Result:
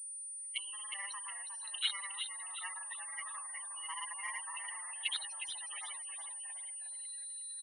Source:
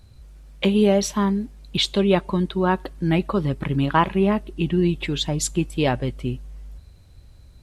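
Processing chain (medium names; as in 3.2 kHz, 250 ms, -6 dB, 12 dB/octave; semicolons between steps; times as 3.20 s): fade-in on the opening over 2.33 s; delay 559 ms -22.5 dB; granulator, pitch spread up and down by 0 st; valve stage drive 31 dB, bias 0.75; comb 1 ms, depth 59%; loudest bins only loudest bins 32; compression 5:1, threshold -49 dBFS, peak gain reduction 18.5 dB; Bessel high-pass 2.8 kHz, order 4; frequency-shifting echo 362 ms, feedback 36%, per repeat -77 Hz, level -8 dB; level rider; distance through air 290 m; class-D stage that switches slowly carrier 9.3 kHz; trim +18 dB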